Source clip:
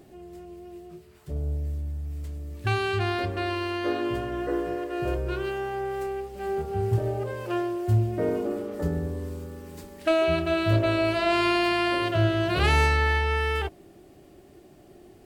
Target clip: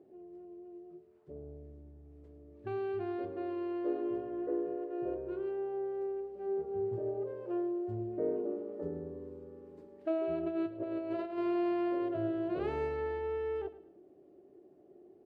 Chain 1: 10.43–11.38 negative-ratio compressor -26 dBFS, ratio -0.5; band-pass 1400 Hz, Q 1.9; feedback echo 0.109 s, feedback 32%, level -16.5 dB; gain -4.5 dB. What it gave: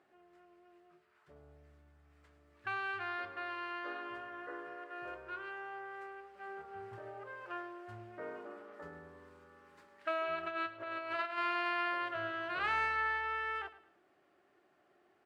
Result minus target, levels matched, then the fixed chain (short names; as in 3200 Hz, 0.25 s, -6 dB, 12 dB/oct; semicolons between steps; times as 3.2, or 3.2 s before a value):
1000 Hz band +9.0 dB
10.43–11.38 negative-ratio compressor -26 dBFS, ratio -0.5; band-pass 410 Hz, Q 1.9; feedback echo 0.109 s, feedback 32%, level -16.5 dB; gain -4.5 dB